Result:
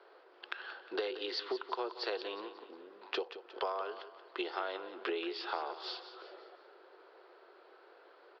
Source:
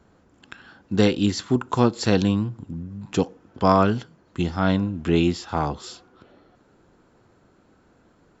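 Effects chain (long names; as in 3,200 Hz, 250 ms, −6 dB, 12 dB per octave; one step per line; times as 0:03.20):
Chebyshev band-pass filter 370–4,800 Hz, order 5
downward compressor 12 to 1, threshold −37 dBFS, peak gain reduction 23 dB
on a send: repeating echo 179 ms, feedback 44%, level −12.5 dB
on the sum: level +3 dB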